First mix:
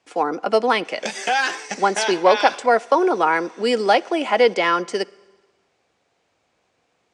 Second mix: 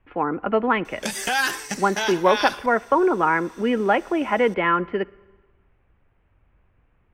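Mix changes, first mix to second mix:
speech: add steep low-pass 2600 Hz 36 dB/oct; master: remove speaker cabinet 250–7300 Hz, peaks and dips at 490 Hz +5 dB, 720 Hz +7 dB, 2300 Hz +4 dB

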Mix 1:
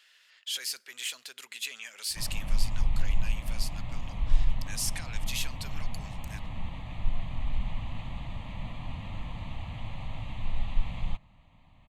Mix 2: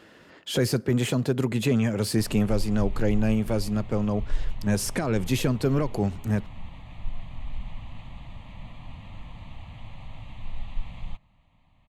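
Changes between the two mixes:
speech: remove Chebyshev high-pass 2900 Hz, order 2; background -4.0 dB

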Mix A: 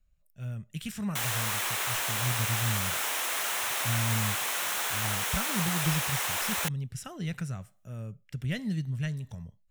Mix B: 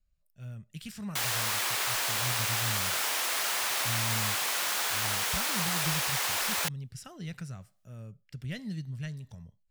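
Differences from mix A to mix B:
speech -5.5 dB; master: add bell 4700 Hz +8 dB 0.38 oct

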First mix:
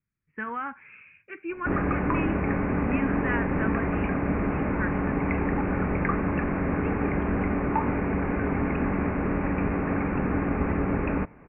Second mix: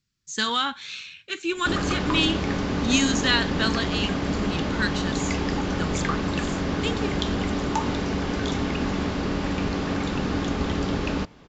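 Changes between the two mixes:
speech +6.0 dB; master: remove steep low-pass 2500 Hz 96 dB/oct

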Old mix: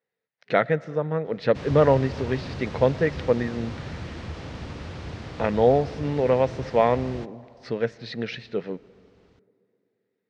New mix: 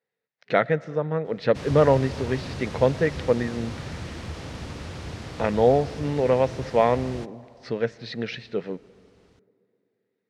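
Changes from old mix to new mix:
speech: add air absorption 68 m; master: remove air absorption 88 m

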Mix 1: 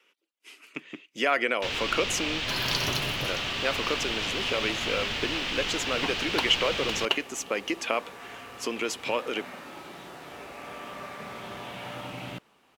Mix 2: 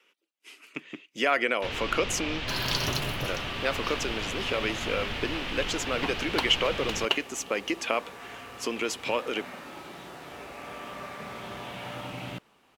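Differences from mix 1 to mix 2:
first sound: add high shelf 3500 Hz -12 dB; master: add low shelf 78 Hz +5.5 dB

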